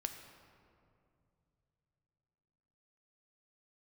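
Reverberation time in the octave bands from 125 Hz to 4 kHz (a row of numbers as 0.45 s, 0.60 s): 4.3 s, 3.4 s, 2.9 s, 2.3 s, 1.8 s, 1.3 s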